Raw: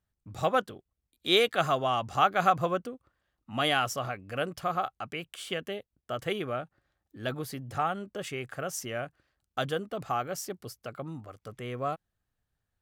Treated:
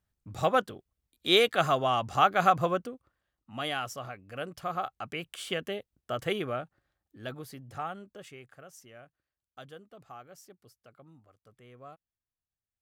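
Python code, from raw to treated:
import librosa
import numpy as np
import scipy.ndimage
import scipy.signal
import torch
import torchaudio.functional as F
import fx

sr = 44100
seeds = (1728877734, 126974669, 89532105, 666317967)

y = fx.gain(x, sr, db=fx.line((2.69, 1.0), (3.55, -6.5), (4.31, -6.5), (5.26, 1.0), (6.37, 1.0), (7.44, -7.0), (7.94, -7.0), (8.71, -16.5)))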